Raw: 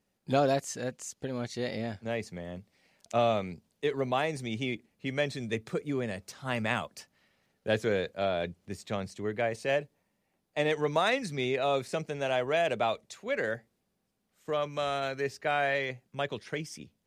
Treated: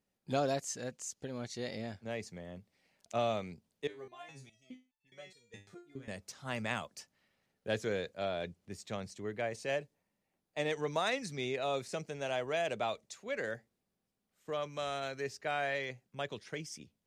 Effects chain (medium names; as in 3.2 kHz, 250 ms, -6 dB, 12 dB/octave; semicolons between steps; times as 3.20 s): dynamic bell 6.4 kHz, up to +6 dB, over -56 dBFS, Q 1.1; 3.87–6.08 s: resonator arpeggio 4.8 Hz 100–890 Hz; trim -6.5 dB